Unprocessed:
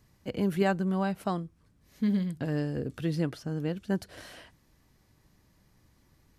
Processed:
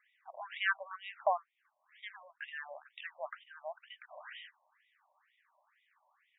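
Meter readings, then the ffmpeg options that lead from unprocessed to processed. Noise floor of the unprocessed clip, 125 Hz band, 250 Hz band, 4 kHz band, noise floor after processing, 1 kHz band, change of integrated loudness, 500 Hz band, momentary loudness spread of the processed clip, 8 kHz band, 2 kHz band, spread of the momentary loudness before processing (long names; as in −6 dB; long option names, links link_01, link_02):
−66 dBFS, below −40 dB, below −40 dB, −1.5 dB, −79 dBFS, −1.0 dB, −9.0 dB, −9.0 dB, 17 LU, below −25 dB, +3.0 dB, 12 LU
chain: -af "afftfilt=real='re*between(b*sr/1024,770*pow(2700/770,0.5+0.5*sin(2*PI*2.1*pts/sr))/1.41,770*pow(2700/770,0.5+0.5*sin(2*PI*2.1*pts/sr))*1.41)':imag='im*between(b*sr/1024,770*pow(2700/770,0.5+0.5*sin(2*PI*2.1*pts/sr))/1.41,770*pow(2700/770,0.5+0.5*sin(2*PI*2.1*pts/sr))*1.41)':win_size=1024:overlap=0.75,volume=5dB"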